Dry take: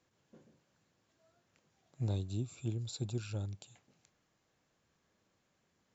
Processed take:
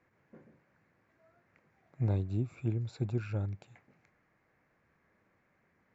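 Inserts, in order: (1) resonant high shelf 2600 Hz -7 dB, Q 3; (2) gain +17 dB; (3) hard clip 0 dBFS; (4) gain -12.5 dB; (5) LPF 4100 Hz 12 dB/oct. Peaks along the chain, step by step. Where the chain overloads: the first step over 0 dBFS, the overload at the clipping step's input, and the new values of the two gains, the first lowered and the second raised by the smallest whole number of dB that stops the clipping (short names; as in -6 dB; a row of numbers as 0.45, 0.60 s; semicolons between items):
-23.0, -6.0, -6.0, -18.5, -18.5 dBFS; no overload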